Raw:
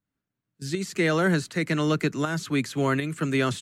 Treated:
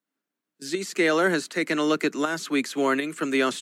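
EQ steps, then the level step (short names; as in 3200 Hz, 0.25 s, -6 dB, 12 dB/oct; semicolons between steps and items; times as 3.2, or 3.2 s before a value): HPF 250 Hz 24 dB/oct; +2.5 dB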